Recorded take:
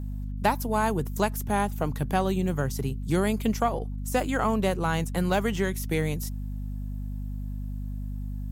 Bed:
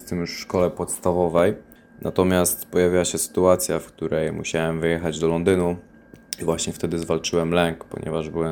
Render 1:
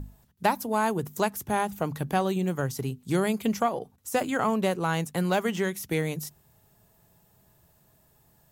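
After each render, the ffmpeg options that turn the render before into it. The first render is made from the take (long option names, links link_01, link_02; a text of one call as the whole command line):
ffmpeg -i in.wav -af "bandreject=frequency=50:width_type=h:width=6,bandreject=frequency=100:width_type=h:width=6,bandreject=frequency=150:width_type=h:width=6,bandreject=frequency=200:width_type=h:width=6,bandreject=frequency=250:width_type=h:width=6" out.wav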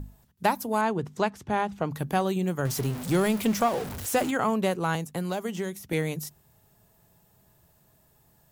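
ffmpeg -i in.wav -filter_complex "[0:a]asettb=1/sr,asplit=3[link_01][link_02][link_03];[link_01]atrim=end=0.814[link_04];[link_02]atrim=start=0.81:end=1.91,asetpts=PTS-STARTPTS,afade=type=in:duration=0.004:curve=qsin,afade=type=out:start_time=1.096:duration=0.004:curve=qsin,lowpass=4700[link_05];[link_03]atrim=start=1.906[link_06];[link_04][link_05]acrossfade=duration=0.004:curve1=hsin:curve2=qsin[link_07];[link_07][link_06]acrossfade=duration=0.004:curve1=qsin:curve2=hsin,asettb=1/sr,asplit=3[link_08][link_09][link_10];[link_08]atrim=end=2.654[link_11];[link_09]atrim=start=2.65:end=4.31,asetpts=PTS-STARTPTS,afade=type=in:duration=0.004:curve=qsin,afade=type=out:start_time=1.656:duration=0.004:curve=qsin,aeval=exprs='val(0)+0.5*0.0299*sgn(val(0))':channel_layout=same[link_12];[link_10]atrim=start=4.306[link_13];[link_11][link_12]acrossfade=duration=0.004:curve1=hsin:curve2=qsin[link_14];[link_14][link_13]acrossfade=duration=0.004:curve1=qsin:curve2=hsin,asettb=1/sr,asplit=3[link_15][link_16][link_17];[link_15]atrim=end=4.954[link_18];[link_16]atrim=start=4.95:end=5.93,asetpts=PTS-STARTPTS,afade=type=in:duration=0.004:curve=qsin,afade=type=out:start_time=0.976:duration=0.004:curve=qsin,acrossover=split=1000|3500[link_19][link_20][link_21];[link_19]acompressor=threshold=-28dB:ratio=4[link_22];[link_20]acompressor=threshold=-45dB:ratio=4[link_23];[link_21]acompressor=threshold=-43dB:ratio=4[link_24];[link_22][link_23][link_24]amix=inputs=3:normalize=0[link_25];[link_17]atrim=start=5.926[link_26];[link_18][link_25]acrossfade=duration=0.004:curve1=hsin:curve2=qsin[link_27];[link_27][link_26]acrossfade=duration=0.004:curve1=qsin:curve2=hsin" out.wav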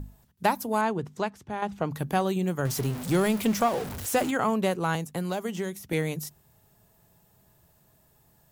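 ffmpeg -i in.wav -filter_complex "[0:a]asplit=2[link_01][link_02];[link_01]atrim=end=1.62,asetpts=PTS-STARTPTS,afade=type=out:start_time=0.78:duration=0.84:silence=0.398107[link_03];[link_02]atrim=start=1.62,asetpts=PTS-STARTPTS,afade=type=in:duration=0.004:curve=hsin:silence=0.398107[link_04];[link_03][link_04]concat=n=2:v=0:a=1" out.wav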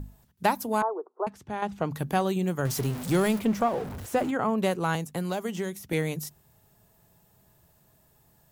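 ffmpeg -i in.wav -filter_complex "[0:a]asettb=1/sr,asplit=3[link_01][link_02][link_03];[link_01]atrim=end=0.824[link_04];[link_02]atrim=start=0.82:end=1.27,asetpts=PTS-STARTPTS,afade=type=in:duration=0.004:curve=qsin,afade=type=out:start_time=0.446:duration=0.004:curve=qsin,asuperpass=centerf=670:order=12:qfactor=0.72[link_05];[link_03]atrim=start=1.266[link_06];[link_04][link_05]acrossfade=duration=0.004:curve1=hsin:curve2=qsin[link_07];[link_07][link_06]acrossfade=duration=0.004:curve1=qsin:curve2=hsin,asettb=1/sr,asplit=3[link_08][link_09][link_10];[link_08]atrim=end=3.394[link_11];[link_09]atrim=start=3.39:end=4.58,asetpts=PTS-STARTPTS,afade=type=in:duration=0.004:curve=qsin,afade=type=out:start_time=1.186:duration=0.004:curve=qsin,highshelf=frequency=2400:gain=-11.5[link_12];[link_10]atrim=start=4.576[link_13];[link_11][link_12]acrossfade=duration=0.004:curve1=hsin:curve2=qsin[link_14];[link_14][link_13]acrossfade=duration=0.004:curve1=qsin:curve2=hsin" out.wav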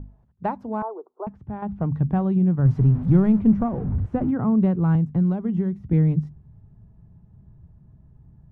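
ffmpeg -i in.wav -af "lowpass=1000,asubboost=boost=10:cutoff=180" out.wav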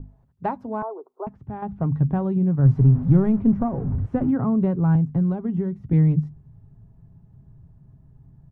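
ffmpeg -i in.wav -af "aecho=1:1:7.4:0.31,adynamicequalizer=threshold=0.00631:dfrequency=1800:dqfactor=0.7:tfrequency=1800:tqfactor=0.7:attack=5:release=100:ratio=0.375:range=3.5:mode=cutabove:tftype=highshelf" out.wav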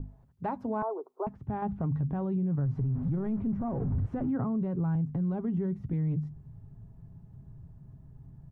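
ffmpeg -i in.wav -af "acompressor=threshold=-25dB:ratio=2.5,alimiter=limit=-24dB:level=0:latency=1:release=32" out.wav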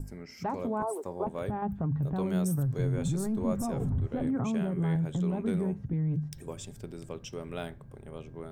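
ffmpeg -i in.wav -i bed.wav -filter_complex "[1:a]volume=-18.5dB[link_01];[0:a][link_01]amix=inputs=2:normalize=0" out.wav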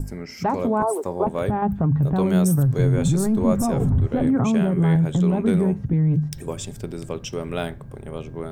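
ffmpeg -i in.wav -af "volume=10.5dB" out.wav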